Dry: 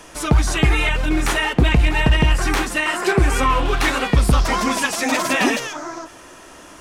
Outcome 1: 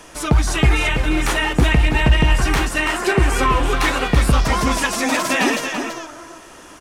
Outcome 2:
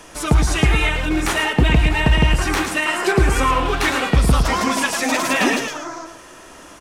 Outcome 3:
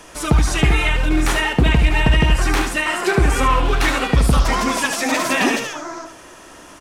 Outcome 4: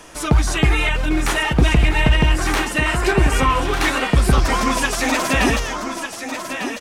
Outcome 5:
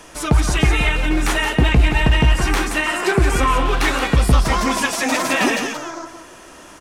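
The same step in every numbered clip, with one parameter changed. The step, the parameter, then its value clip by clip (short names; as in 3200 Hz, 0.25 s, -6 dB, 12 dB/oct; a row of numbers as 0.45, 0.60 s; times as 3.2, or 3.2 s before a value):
echo, time: 333, 110, 74, 1199, 175 ms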